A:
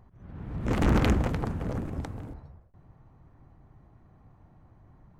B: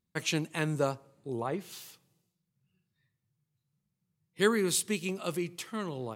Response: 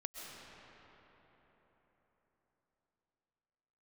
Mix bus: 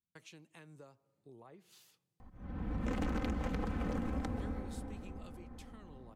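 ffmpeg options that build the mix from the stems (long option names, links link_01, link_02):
-filter_complex "[0:a]aecho=1:1:3.9:0.65,adelay=2200,volume=-2.5dB,asplit=2[link_01][link_02];[link_02]volume=-4.5dB[link_03];[1:a]acompressor=threshold=-38dB:ratio=6,volume=-14.5dB,asplit=2[link_04][link_05];[link_05]apad=whole_len=326498[link_06];[link_01][link_06]sidechaincompress=threshold=-57dB:ratio=8:attack=16:release=222[link_07];[2:a]atrim=start_sample=2205[link_08];[link_03][link_08]afir=irnorm=-1:irlink=0[link_09];[link_07][link_04][link_09]amix=inputs=3:normalize=0,acrossover=split=460|1000[link_10][link_11][link_12];[link_10]acompressor=threshold=-31dB:ratio=4[link_13];[link_11]acompressor=threshold=-43dB:ratio=4[link_14];[link_12]acompressor=threshold=-43dB:ratio=4[link_15];[link_13][link_14][link_15]amix=inputs=3:normalize=0,highshelf=frequency=11000:gain=-5,acompressor=threshold=-33dB:ratio=2.5"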